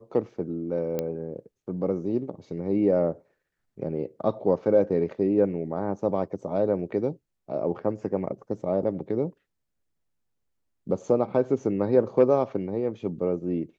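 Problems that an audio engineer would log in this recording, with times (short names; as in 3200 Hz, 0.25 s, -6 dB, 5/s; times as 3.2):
0.99 pop -15 dBFS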